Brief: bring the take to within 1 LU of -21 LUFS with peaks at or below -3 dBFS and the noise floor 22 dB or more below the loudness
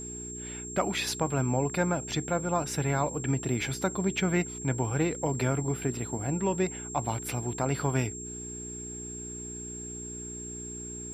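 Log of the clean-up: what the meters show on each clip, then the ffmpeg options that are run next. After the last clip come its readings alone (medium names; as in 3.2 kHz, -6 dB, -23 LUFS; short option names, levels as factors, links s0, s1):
hum 60 Hz; highest harmonic 420 Hz; hum level -41 dBFS; steady tone 7.5 kHz; tone level -39 dBFS; loudness -31.0 LUFS; peak level -13.5 dBFS; loudness target -21.0 LUFS
-> -af "bandreject=f=60:t=h:w=4,bandreject=f=120:t=h:w=4,bandreject=f=180:t=h:w=4,bandreject=f=240:t=h:w=4,bandreject=f=300:t=h:w=4,bandreject=f=360:t=h:w=4,bandreject=f=420:t=h:w=4"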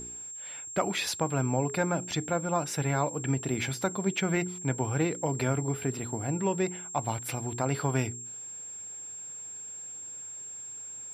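hum not found; steady tone 7.5 kHz; tone level -39 dBFS
-> -af "bandreject=f=7500:w=30"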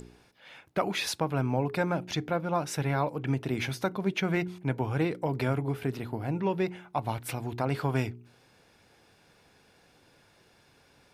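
steady tone not found; loudness -31.0 LUFS; peak level -14.5 dBFS; loudness target -21.0 LUFS
-> -af "volume=3.16"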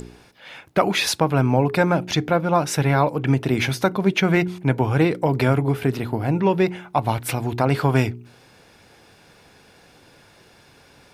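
loudness -21.0 LUFS; peak level -4.5 dBFS; noise floor -53 dBFS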